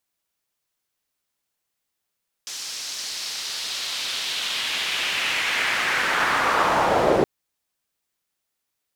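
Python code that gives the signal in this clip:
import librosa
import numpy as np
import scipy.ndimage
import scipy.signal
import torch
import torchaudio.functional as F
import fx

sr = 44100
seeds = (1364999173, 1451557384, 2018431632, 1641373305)

y = fx.riser_noise(sr, seeds[0], length_s=4.77, colour='pink', kind='bandpass', start_hz=5500.0, end_hz=410.0, q=1.9, swell_db=14.5, law='linear')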